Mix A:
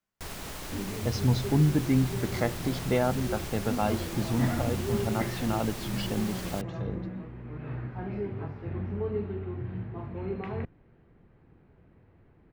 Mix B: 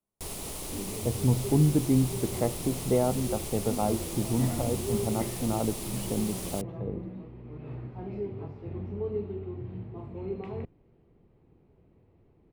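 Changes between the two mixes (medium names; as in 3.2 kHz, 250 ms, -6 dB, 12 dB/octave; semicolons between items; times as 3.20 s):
speech: add low-pass 1.5 kHz; second sound -3.5 dB; master: add fifteen-band graphic EQ 400 Hz +4 dB, 1.6 kHz -11 dB, 10 kHz +10 dB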